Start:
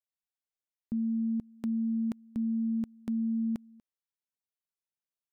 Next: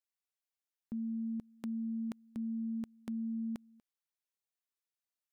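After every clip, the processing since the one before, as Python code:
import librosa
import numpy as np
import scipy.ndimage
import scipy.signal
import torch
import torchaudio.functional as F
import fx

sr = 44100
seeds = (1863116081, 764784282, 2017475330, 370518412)

y = fx.low_shelf(x, sr, hz=370.0, db=-8.5)
y = y * 10.0 ** (-1.0 / 20.0)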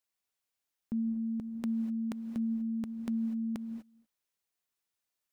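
y = fx.rev_gated(x, sr, seeds[0], gate_ms=270, shape='rising', drr_db=10.0)
y = y * 10.0 ** (5.5 / 20.0)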